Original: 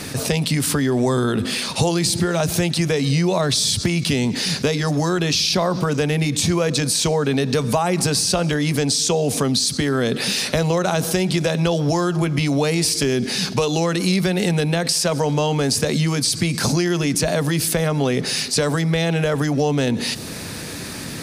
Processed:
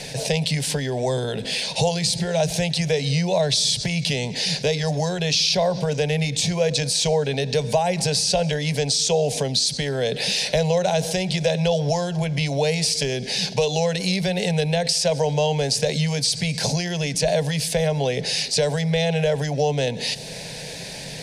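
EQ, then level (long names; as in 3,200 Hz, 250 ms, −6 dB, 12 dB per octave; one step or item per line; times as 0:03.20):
high-frequency loss of the air 61 metres
parametric band 230 Hz −15 dB 0.65 octaves
phaser with its sweep stopped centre 330 Hz, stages 6
+3.0 dB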